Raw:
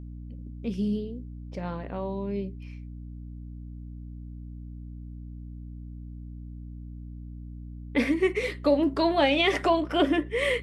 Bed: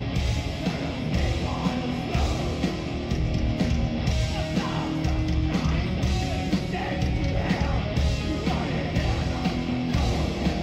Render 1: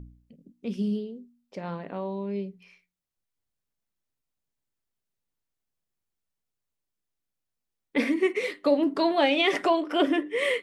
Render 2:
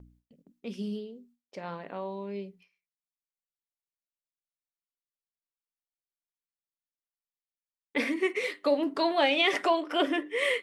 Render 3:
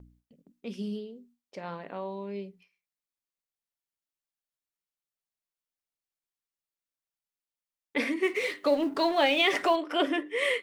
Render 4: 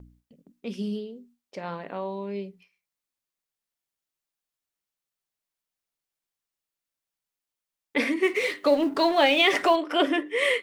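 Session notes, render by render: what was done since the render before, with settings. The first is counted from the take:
de-hum 60 Hz, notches 5
gate with hold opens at -45 dBFS; low shelf 340 Hz -10 dB
8.23–9.76 G.711 law mismatch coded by mu
gain +4 dB

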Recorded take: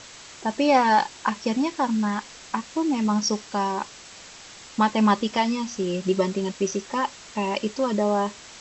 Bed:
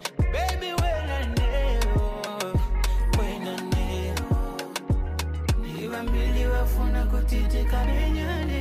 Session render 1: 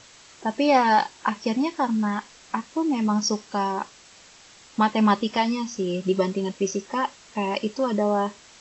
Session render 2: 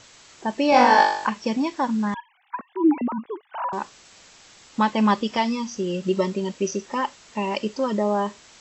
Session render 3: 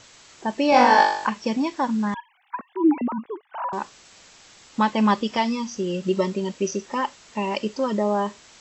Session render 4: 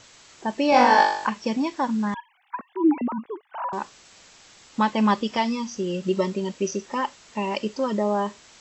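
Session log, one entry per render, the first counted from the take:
noise print and reduce 6 dB
0.7–1.27 flutter echo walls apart 3.5 m, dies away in 0.67 s; 2.14–3.73 sine-wave speech
3.27–3.73 air absorption 200 m
gain -1 dB

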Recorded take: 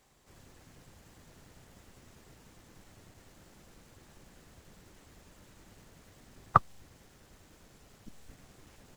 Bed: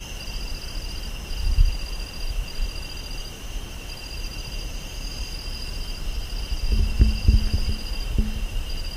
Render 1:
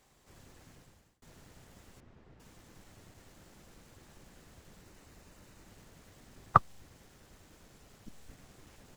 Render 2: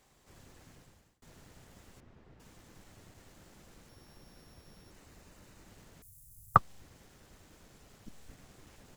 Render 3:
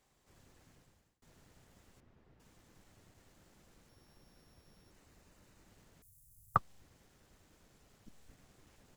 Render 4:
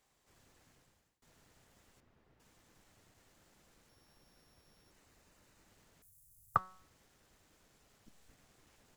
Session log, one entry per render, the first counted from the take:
0.7–1.22 fade out; 2–2.4 tape spacing loss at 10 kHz 29 dB; 4.83–5.67 notch 3300 Hz, Q 13
3.89–4.91 sample sorter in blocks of 8 samples; 6.02–6.56 EQ curve 120 Hz 0 dB, 260 Hz -26 dB, 2800 Hz -29 dB, 11000 Hz +14 dB
gain -7.5 dB
low shelf 420 Hz -6 dB; de-hum 185.8 Hz, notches 40

